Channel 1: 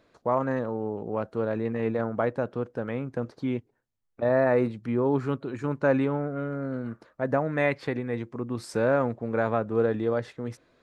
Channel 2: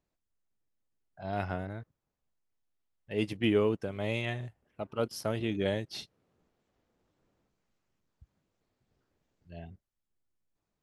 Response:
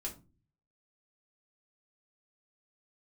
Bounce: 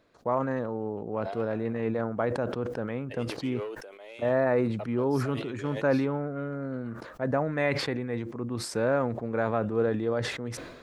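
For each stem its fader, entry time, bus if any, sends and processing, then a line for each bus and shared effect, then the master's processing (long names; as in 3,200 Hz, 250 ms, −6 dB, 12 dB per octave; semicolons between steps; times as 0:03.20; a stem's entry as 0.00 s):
−2.5 dB, 0.00 s, no send, no processing
−10.0 dB, 0.00 s, no send, high-pass filter 400 Hz 24 dB per octave; soft clipping −26 dBFS, distortion −16 dB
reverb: not used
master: level that may fall only so fast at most 50 dB per second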